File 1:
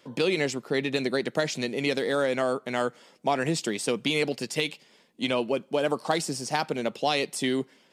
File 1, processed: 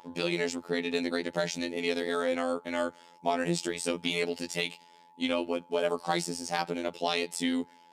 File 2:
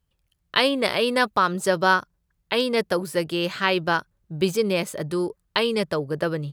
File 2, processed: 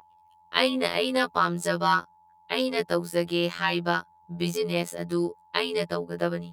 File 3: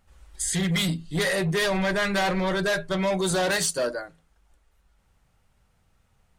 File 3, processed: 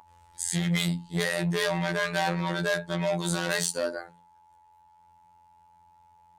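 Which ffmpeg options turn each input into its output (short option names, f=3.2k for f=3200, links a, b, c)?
-af "aeval=exprs='val(0)+0.01*sin(2*PI*900*n/s)':c=same,highpass=62,afftfilt=real='hypot(re,im)*cos(PI*b)':imag='0':win_size=2048:overlap=0.75"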